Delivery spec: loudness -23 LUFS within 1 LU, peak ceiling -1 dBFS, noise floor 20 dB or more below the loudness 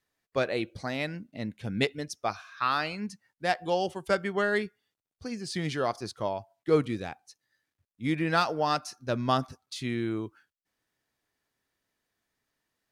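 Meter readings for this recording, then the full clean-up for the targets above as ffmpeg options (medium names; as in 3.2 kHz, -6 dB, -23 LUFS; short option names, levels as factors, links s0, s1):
loudness -30.5 LUFS; peak level -10.0 dBFS; loudness target -23.0 LUFS
-> -af "volume=2.37"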